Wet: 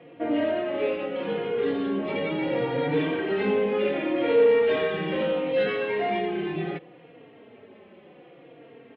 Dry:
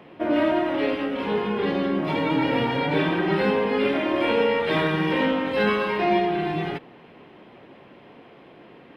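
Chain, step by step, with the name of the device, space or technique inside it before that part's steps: barber-pole flanger into a guitar amplifier (endless flanger 3.7 ms -0.71 Hz; saturation -16.5 dBFS, distortion -22 dB; cabinet simulation 97–3500 Hz, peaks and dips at 470 Hz +7 dB, 980 Hz -7 dB, 1.5 kHz -3 dB)

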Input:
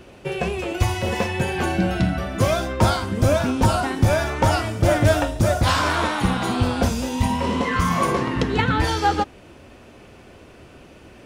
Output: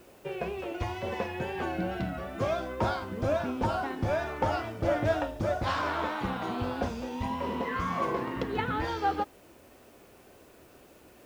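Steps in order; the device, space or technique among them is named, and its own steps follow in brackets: tone controls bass -9 dB, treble +3 dB; cassette deck with a dirty head (tape spacing loss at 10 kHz 26 dB; wow and flutter; white noise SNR 32 dB); trim -6 dB

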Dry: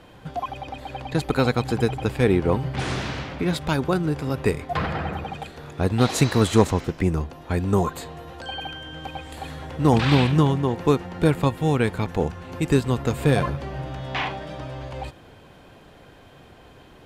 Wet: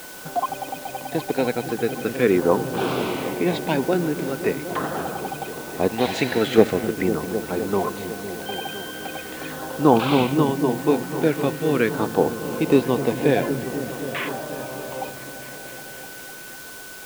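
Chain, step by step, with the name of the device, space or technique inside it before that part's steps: shortwave radio (band-pass 270–2800 Hz; tremolo 0.32 Hz, depth 45%; LFO notch saw down 0.42 Hz 770–2400 Hz; whistle 1.5 kHz -50 dBFS; white noise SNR 17 dB); 5.88–6.58 s: bass shelf 480 Hz -8 dB; delay with an opening low-pass 254 ms, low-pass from 200 Hz, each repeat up 1 oct, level -6 dB; trim +6.5 dB

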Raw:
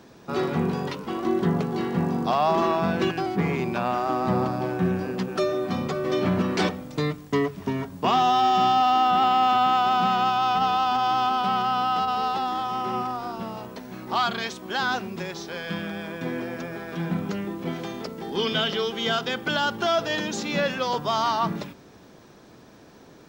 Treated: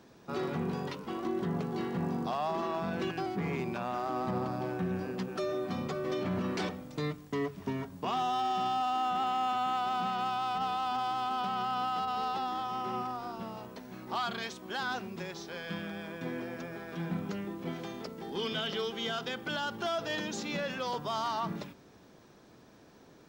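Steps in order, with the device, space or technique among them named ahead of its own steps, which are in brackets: limiter into clipper (peak limiter -17 dBFS, peak gain reduction 5 dB; hard clipper -18.5 dBFS, distortion -30 dB); trim -7.5 dB

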